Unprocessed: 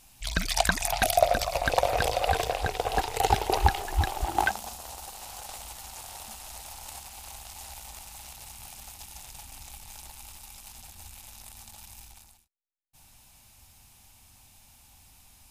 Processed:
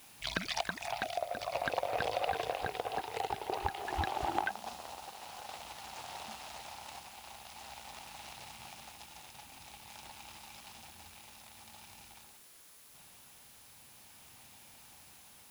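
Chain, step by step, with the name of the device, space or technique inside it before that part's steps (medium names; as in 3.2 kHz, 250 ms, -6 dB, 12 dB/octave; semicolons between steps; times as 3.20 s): medium wave at night (band-pass 140–4000 Hz; compression, threshold -31 dBFS, peak gain reduction 16 dB; tremolo 0.48 Hz, depth 36%; whistle 10 kHz -65 dBFS; white noise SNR 17 dB); trim +1.5 dB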